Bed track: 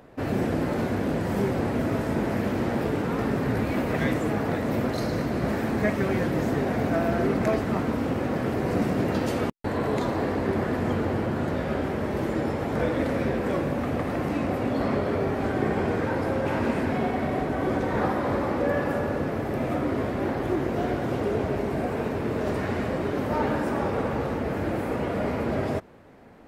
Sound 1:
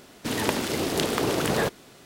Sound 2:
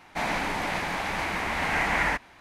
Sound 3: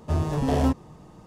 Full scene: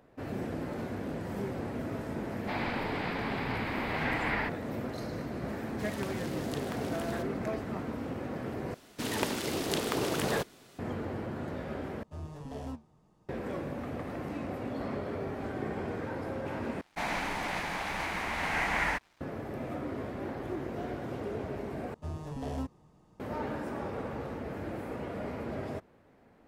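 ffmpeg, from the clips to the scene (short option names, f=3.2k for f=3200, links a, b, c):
-filter_complex "[2:a]asplit=2[a][b];[1:a]asplit=2[c][d];[3:a]asplit=2[e][f];[0:a]volume=-10.5dB[g];[a]aresample=11025,aresample=44100[h];[e]flanger=delay=4.5:depth=8.9:regen=69:speed=1.9:shape=sinusoidal[i];[b]aeval=exprs='sgn(val(0))*max(abs(val(0))-0.00251,0)':c=same[j];[g]asplit=5[k][l][m][n][o];[k]atrim=end=8.744[p];[d]atrim=end=2.05,asetpts=PTS-STARTPTS,volume=-6dB[q];[l]atrim=start=10.786:end=12.034[r];[i]atrim=end=1.26,asetpts=PTS-STARTPTS,volume=-13.5dB[s];[m]atrim=start=13.286:end=16.814[t];[j]atrim=end=2.4,asetpts=PTS-STARTPTS,volume=-4.5dB[u];[n]atrim=start=19.206:end=21.944[v];[f]atrim=end=1.26,asetpts=PTS-STARTPTS,volume=-14dB[w];[o]atrim=start=23.196[x];[h]atrim=end=2.4,asetpts=PTS-STARTPTS,volume=-7.5dB,afade=t=in:d=0.004:c=hsin,afade=t=out:st=2.396:d=0.004:c=hsin,adelay=2320[y];[c]atrim=end=2.05,asetpts=PTS-STARTPTS,volume=-16.5dB,afade=t=in:d=0.004:c=hsin,afade=t=out:st=2.046:d=0.004:c=hsin,adelay=5540[z];[p][q]acrossfade=d=0.004:c1=hsin:c2=hsin[aa];[aa][r]acrossfade=d=0.004:c1=hsin:c2=hsin[ab];[ab][s]acrossfade=d=0.004:c1=hsin:c2=hsin[ac];[ac][t]acrossfade=d=0.004:c1=hsin:c2=hsin[ad];[ad][u]acrossfade=d=0.004:c1=hsin:c2=hsin[ae];[ae][v]acrossfade=d=0.004:c1=hsin:c2=hsin[af];[af][w]acrossfade=d=0.004:c1=hsin:c2=hsin[ag];[ag][x]acrossfade=d=0.004:c1=hsin:c2=hsin[ah];[ah][y][z]amix=inputs=3:normalize=0"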